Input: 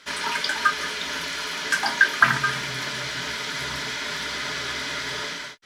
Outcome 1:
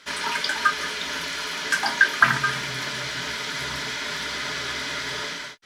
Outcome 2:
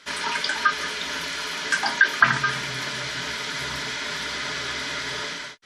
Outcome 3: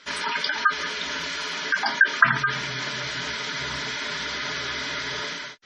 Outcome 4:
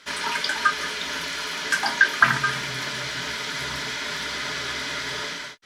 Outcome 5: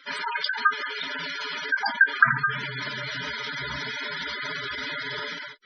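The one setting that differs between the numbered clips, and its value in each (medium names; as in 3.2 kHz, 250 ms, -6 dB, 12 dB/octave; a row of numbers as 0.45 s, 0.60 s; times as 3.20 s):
spectral gate, under each frame's peak: -60 dB, -35 dB, -20 dB, -50 dB, -10 dB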